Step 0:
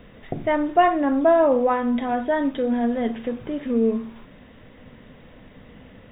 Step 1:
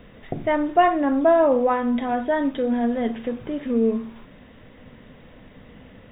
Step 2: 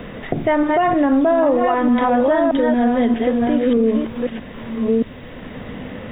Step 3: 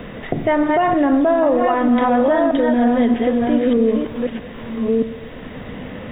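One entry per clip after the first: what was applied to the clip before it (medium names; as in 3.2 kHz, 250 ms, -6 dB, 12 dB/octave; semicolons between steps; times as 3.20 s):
no audible change
chunks repeated in reverse 628 ms, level -4.5 dB; peak limiter -15.5 dBFS, peak gain reduction 10.5 dB; three bands compressed up and down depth 40%; trim +7 dB
reverberation RT60 1.4 s, pre-delay 83 ms, DRR 12.5 dB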